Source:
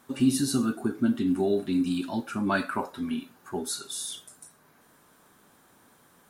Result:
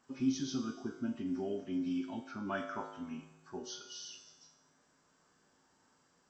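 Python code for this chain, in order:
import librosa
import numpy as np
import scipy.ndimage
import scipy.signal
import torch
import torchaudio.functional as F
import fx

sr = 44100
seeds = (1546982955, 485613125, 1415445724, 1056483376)

y = fx.freq_compress(x, sr, knee_hz=2000.0, ratio=1.5)
y = fx.comb_fb(y, sr, f0_hz=53.0, decay_s=1.2, harmonics='odd', damping=0.0, mix_pct=80)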